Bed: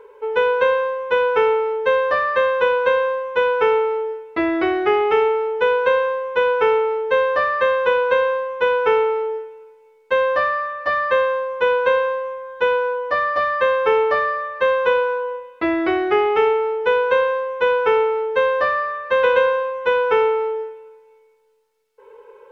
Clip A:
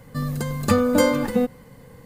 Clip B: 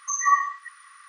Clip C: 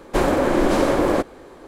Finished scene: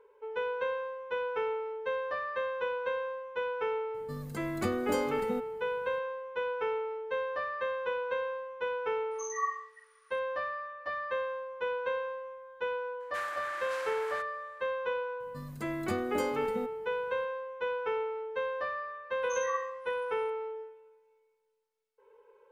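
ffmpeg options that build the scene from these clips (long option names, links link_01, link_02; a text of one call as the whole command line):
ffmpeg -i bed.wav -i cue0.wav -i cue1.wav -i cue2.wav -filter_complex "[1:a]asplit=2[link_01][link_02];[2:a]asplit=2[link_03][link_04];[0:a]volume=-16dB[link_05];[link_03]asplit=2[link_06][link_07];[link_07]adelay=45,volume=-4.5dB[link_08];[link_06][link_08]amix=inputs=2:normalize=0[link_09];[3:a]highpass=frequency=1600:width_type=q:width=2.1[link_10];[link_01]atrim=end=2.05,asetpts=PTS-STARTPTS,volume=-14.5dB,afade=type=in:duration=0.004:curve=hsin,afade=type=out:start_time=2.046:duration=0.004:curve=hsin,adelay=3940[link_11];[link_09]atrim=end=1.08,asetpts=PTS-STARTPTS,volume=-15.5dB,afade=type=in:duration=0.004:curve=hsin,afade=type=out:start_time=1.076:duration=0.004:curve=hsin,adelay=9110[link_12];[link_10]atrim=end=1.67,asetpts=PTS-STARTPTS,volume=-17.5dB,afade=type=in:duration=0.004:curve=hsin,afade=type=out:start_time=1.666:duration=0.004:curve=hsin,adelay=573300S[link_13];[link_02]atrim=end=2.05,asetpts=PTS-STARTPTS,volume=-17dB,afade=type=in:duration=0.004:curve=hsin,afade=type=out:start_time=2.046:duration=0.004:curve=hsin,adelay=15200[link_14];[link_04]atrim=end=1.08,asetpts=PTS-STARTPTS,volume=-16dB,afade=type=in:duration=0.004:curve=hsin,afade=type=out:start_time=1.076:duration=0.004:curve=hsin,adelay=19220[link_15];[link_05][link_11][link_12][link_13][link_14][link_15]amix=inputs=6:normalize=0" out.wav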